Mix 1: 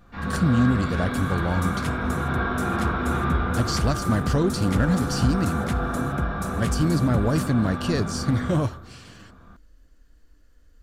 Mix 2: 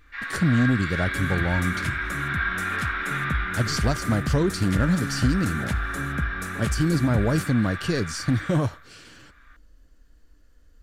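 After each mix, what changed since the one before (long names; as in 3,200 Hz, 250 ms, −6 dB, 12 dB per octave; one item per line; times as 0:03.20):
first sound: add high-pass with resonance 1,900 Hz, resonance Q 4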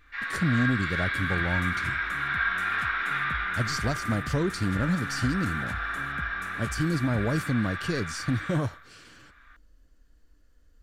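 speech −4.5 dB
second sound −11.0 dB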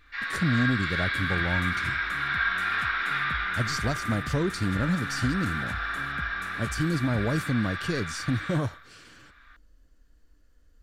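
first sound: add parametric band 4,700 Hz +8 dB 0.84 octaves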